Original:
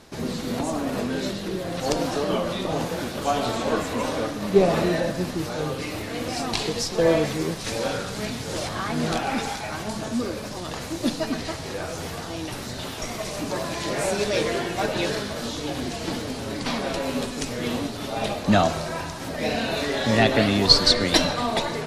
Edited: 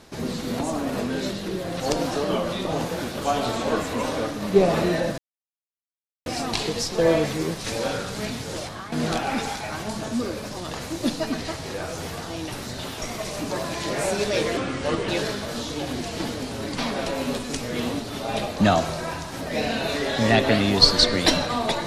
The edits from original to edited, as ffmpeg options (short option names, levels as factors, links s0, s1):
-filter_complex "[0:a]asplit=6[s0][s1][s2][s3][s4][s5];[s0]atrim=end=5.18,asetpts=PTS-STARTPTS,afade=t=out:st=5.176:d=0.004:c=hsin[s6];[s1]atrim=start=5.18:end=6.26,asetpts=PTS-STARTPTS,volume=0[s7];[s2]atrim=start=6.26:end=8.92,asetpts=PTS-STARTPTS,afade=t=in:d=0.004:c=hsin,afade=t=out:st=2.12:d=0.54:silence=0.281838[s8];[s3]atrim=start=8.92:end=14.574,asetpts=PTS-STARTPTS,afade=t=in:d=0.004:c=hsin:silence=0.281838[s9];[s4]atrim=start=14.57:end=14.96,asetpts=PTS-STARTPTS,asetrate=33516,aresample=44100,atrim=end_sample=22630,asetpts=PTS-STARTPTS[s10];[s5]atrim=start=14.956[s11];[s6][s7][s8][s9]concat=n=4:v=0:a=1[s12];[s12][s10]acrossfade=d=0.004:c1=hsin:c2=hsin[s13];[s13][s11]acrossfade=d=0.004:c1=hsin:c2=hsin"